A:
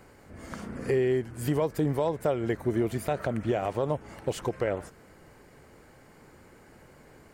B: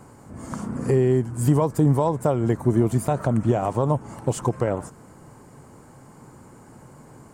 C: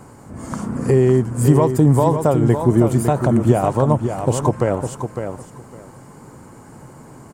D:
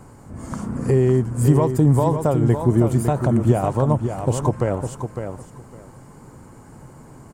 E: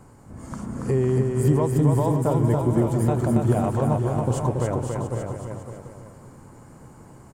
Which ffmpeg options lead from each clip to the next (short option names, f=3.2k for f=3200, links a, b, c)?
-af "equalizer=f=125:t=o:w=1:g=11,equalizer=f=250:t=o:w=1:g=7,equalizer=f=1k:t=o:w=1:g=10,equalizer=f=2k:t=o:w=1:g=-5,equalizer=f=4k:t=o:w=1:g=-3,equalizer=f=8k:t=o:w=1:g=11"
-af "aecho=1:1:556|1112|1668:0.422|0.0759|0.0137,volume=5dB"
-af "lowshelf=f=78:g=10.5,volume=-4dB"
-af "aecho=1:1:280|504|683.2|826.6|941.2:0.631|0.398|0.251|0.158|0.1,volume=-5dB"